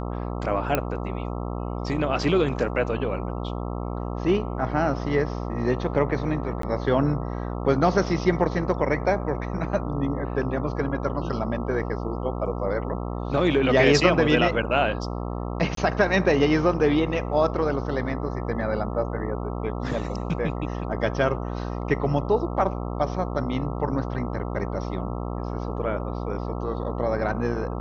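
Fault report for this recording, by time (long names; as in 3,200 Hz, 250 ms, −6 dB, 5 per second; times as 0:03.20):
mains buzz 60 Hz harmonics 22 −30 dBFS
0:00.75: click −8 dBFS
0:06.62–0:06.63: drop-out 13 ms
0:15.75–0:15.77: drop-out 23 ms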